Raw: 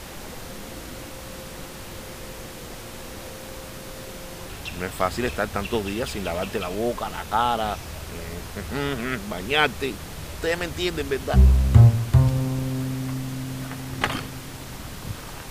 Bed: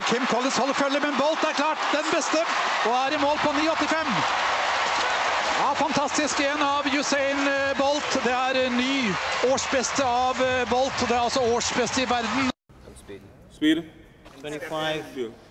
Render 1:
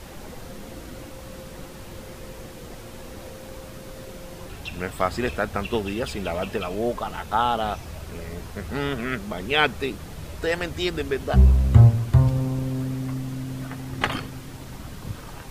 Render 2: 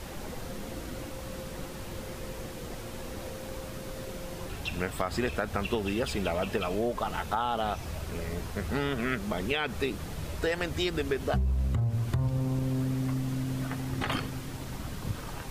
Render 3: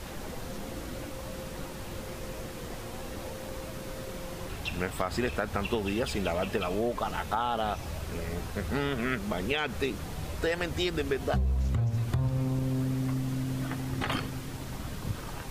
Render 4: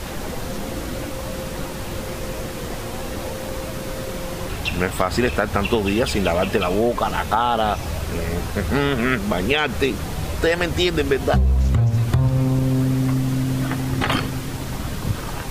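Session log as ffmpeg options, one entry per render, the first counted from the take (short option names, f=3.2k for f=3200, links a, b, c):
-af "afftdn=nr=6:nf=-38"
-af "alimiter=limit=-13dB:level=0:latency=1:release=70,acompressor=threshold=-25dB:ratio=6"
-filter_complex "[1:a]volume=-29dB[a];[0:a][a]amix=inputs=2:normalize=0"
-af "volume=10.5dB"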